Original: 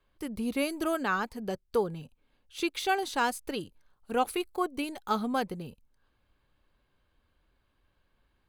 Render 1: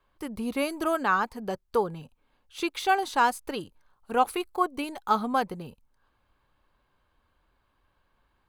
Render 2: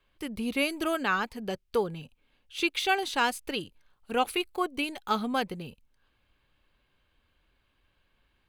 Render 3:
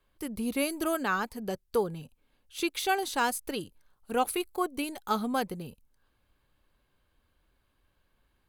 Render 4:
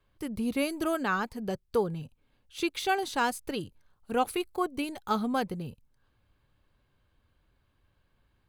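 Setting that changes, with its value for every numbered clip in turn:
peaking EQ, frequency: 1 kHz, 2.7 kHz, 13 kHz, 110 Hz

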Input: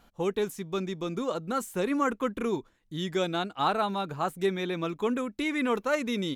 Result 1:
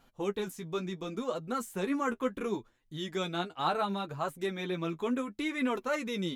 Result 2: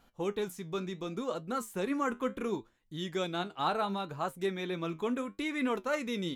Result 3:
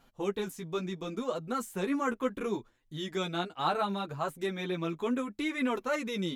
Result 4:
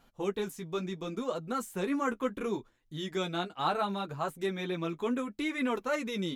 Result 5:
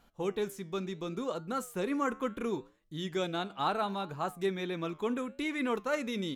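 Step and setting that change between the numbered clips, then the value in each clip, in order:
flange, regen: +24%, +70%, +3%, -21%, -86%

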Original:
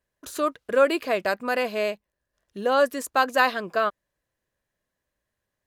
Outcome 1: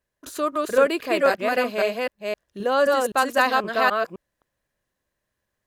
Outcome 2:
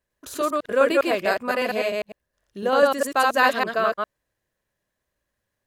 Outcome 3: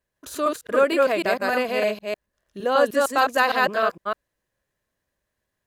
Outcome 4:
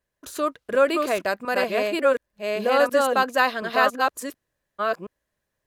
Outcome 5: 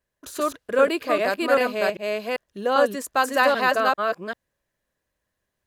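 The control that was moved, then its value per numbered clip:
chunks repeated in reverse, time: 260 ms, 101 ms, 153 ms, 724 ms, 394 ms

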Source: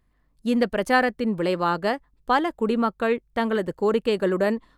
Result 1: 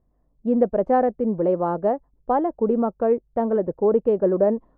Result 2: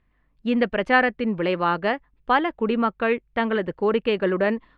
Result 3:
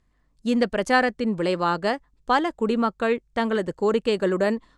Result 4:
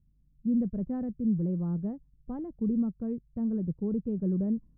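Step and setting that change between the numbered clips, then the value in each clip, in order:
resonant low-pass, frequency: 650 Hz, 2.6 kHz, 7.4 kHz, 160 Hz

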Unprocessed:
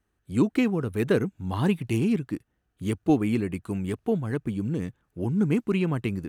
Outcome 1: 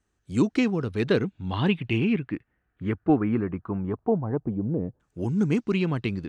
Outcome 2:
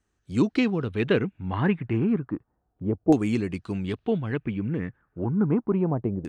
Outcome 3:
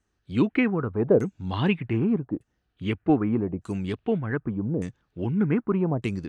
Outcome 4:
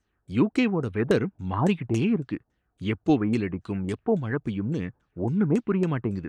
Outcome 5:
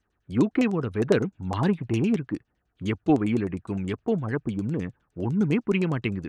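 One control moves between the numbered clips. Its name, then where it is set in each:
LFO low-pass, rate: 0.2 Hz, 0.32 Hz, 0.83 Hz, 3.6 Hz, 9.8 Hz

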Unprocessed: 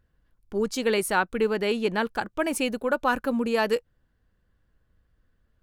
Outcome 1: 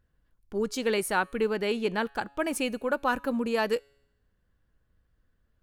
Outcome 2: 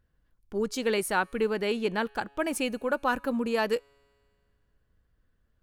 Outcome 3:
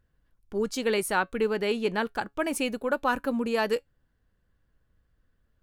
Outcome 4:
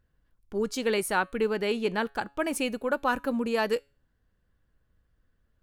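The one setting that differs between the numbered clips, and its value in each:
feedback comb, decay: 0.87 s, 2.2 s, 0.15 s, 0.36 s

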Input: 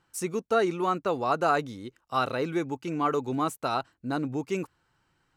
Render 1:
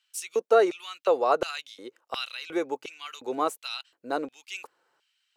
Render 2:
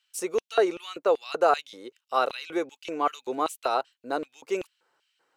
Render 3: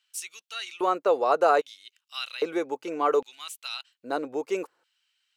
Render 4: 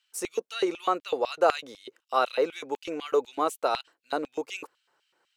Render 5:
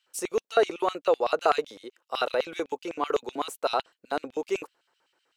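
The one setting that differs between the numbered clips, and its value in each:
LFO high-pass, rate: 1.4 Hz, 2.6 Hz, 0.62 Hz, 4 Hz, 7.9 Hz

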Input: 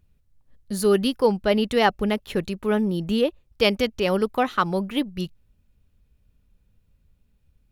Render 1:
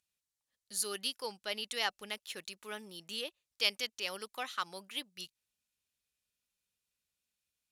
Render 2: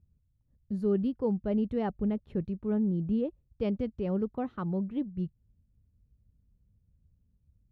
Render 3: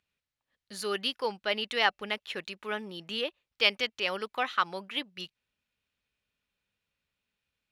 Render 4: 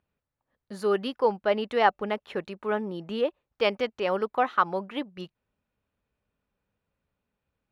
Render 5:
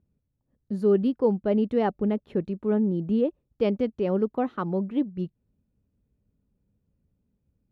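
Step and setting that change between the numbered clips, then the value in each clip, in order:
band-pass filter, frequency: 7.5 kHz, 100 Hz, 2.7 kHz, 1 kHz, 260 Hz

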